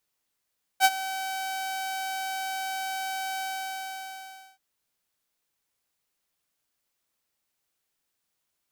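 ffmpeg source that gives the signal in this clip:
-f lavfi -i "aevalsrc='0.266*(2*mod(765*t,1)-1)':d=3.78:s=44100,afade=t=in:d=0.05,afade=t=out:st=0.05:d=0.043:silence=0.158,afade=t=out:st=2.6:d=1.18"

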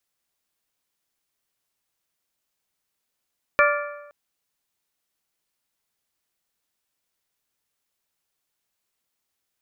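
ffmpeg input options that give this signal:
-f lavfi -i "aevalsrc='0.141*pow(10,-3*t/1.05)*sin(2*PI*584*t)+0.133*pow(10,-3*t/0.853)*sin(2*PI*1168*t)+0.126*pow(10,-3*t/0.807)*sin(2*PI*1401.6*t)+0.119*pow(10,-3*t/0.755)*sin(2*PI*1752*t)+0.112*pow(10,-3*t/0.693)*sin(2*PI*2336*t)':d=0.52:s=44100"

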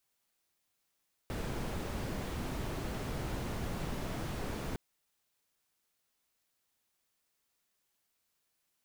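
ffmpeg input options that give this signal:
-f lavfi -i "anoisesrc=c=brown:a=0.0661:d=3.46:r=44100:seed=1"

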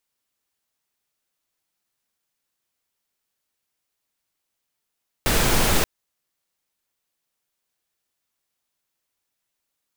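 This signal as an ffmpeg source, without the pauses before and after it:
-f lavfi -i "anoisesrc=c=pink:a=0.575:d=0.58:r=44100:seed=1"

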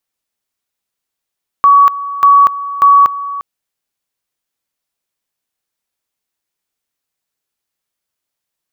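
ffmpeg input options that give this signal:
-f lavfi -i "aevalsrc='pow(10,(-3-15.5*gte(mod(t,0.59),0.24))/20)*sin(2*PI*1130*t)':d=1.77:s=44100"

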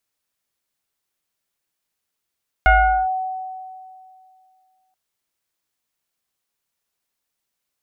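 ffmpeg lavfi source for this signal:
-f lavfi -i "aevalsrc='0.398*pow(10,-3*t/2.37)*sin(2*PI*751*t+1.5*clip(1-t/0.42,0,1)*sin(2*PI*0.93*751*t))':d=2.28:s=44100"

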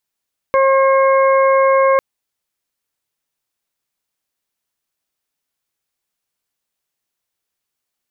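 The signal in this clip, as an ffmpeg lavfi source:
-f lavfi -i "aevalsrc='0.282*sin(2*PI*538*t)+0.188*sin(2*PI*1076*t)+0.0501*sin(2*PI*1614*t)+0.0631*sin(2*PI*2152*t)':d=1.45:s=44100"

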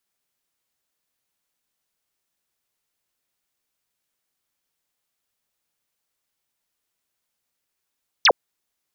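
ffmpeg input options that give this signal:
-f lavfi -i "aevalsrc='0.299*clip(t/0.002,0,1)*clip((0.06-t)/0.002,0,1)*sin(2*PI*6400*0.06/log(390/6400)*(exp(log(390/6400)*t/0.06)-1))':d=0.06:s=44100"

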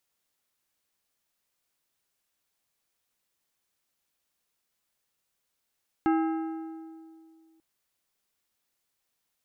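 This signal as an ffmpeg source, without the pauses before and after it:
-f lavfi -i "aevalsrc='0.0944*pow(10,-3*t/2.28)*sin(2*PI*323*t)+0.0473*pow(10,-3*t/1.732)*sin(2*PI*807.5*t)+0.0237*pow(10,-3*t/1.504)*sin(2*PI*1292*t)+0.0119*pow(10,-3*t/1.407)*sin(2*PI*1615*t)+0.00596*pow(10,-3*t/1.3)*sin(2*PI*2099.5*t)+0.00299*pow(10,-3*t/1.2)*sin(2*PI*2745.5*t)':d=1.54:s=44100"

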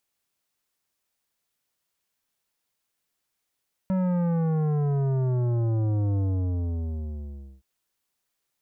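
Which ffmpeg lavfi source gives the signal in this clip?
-f lavfi -i "aevalsrc='0.0708*clip((3.72-t)/1.45,0,1)*tanh(3.98*sin(2*PI*190*3.72/log(65/190)*(exp(log(65/190)*t/3.72)-1)))/tanh(3.98)':d=3.72:s=44100"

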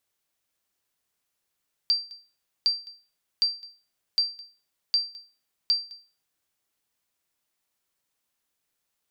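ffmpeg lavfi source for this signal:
-f lavfi -i "aevalsrc='0.178*(sin(2*PI*4700*mod(t,0.76))*exp(-6.91*mod(t,0.76)/0.35)+0.075*sin(2*PI*4700*max(mod(t,0.76)-0.21,0))*exp(-6.91*max(mod(t,0.76)-0.21,0)/0.35))':d=4.56:s=44100"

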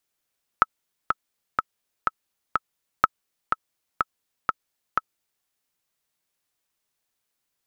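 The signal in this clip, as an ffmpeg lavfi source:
-f lavfi -i "aevalsrc='pow(10,(-2-5.5*gte(mod(t,5*60/124),60/124))/20)*sin(2*PI*1300*mod(t,60/124))*exp(-6.91*mod(t,60/124)/0.03)':d=4.83:s=44100"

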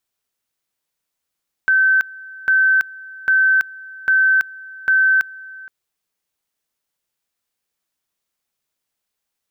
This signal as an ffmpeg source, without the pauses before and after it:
-f lavfi -i "aevalsrc='pow(10,(-11-22*gte(mod(t,0.8),0.33))/20)*sin(2*PI*1540*t)':d=4:s=44100"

